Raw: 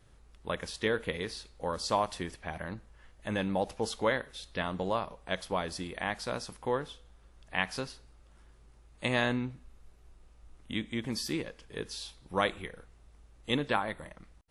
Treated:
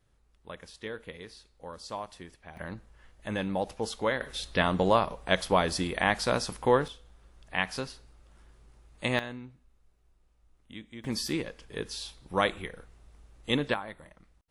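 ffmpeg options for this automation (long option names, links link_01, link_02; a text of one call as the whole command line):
ffmpeg -i in.wav -af "asetnsamples=nb_out_samples=441:pad=0,asendcmd='2.57 volume volume 0dB;4.21 volume volume 8dB;6.88 volume volume 1.5dB;9.19 volume volume -10dB;11.04 volume volume 2.5dB;13.74 volume volume -6dB',volume=-9dB" out.wav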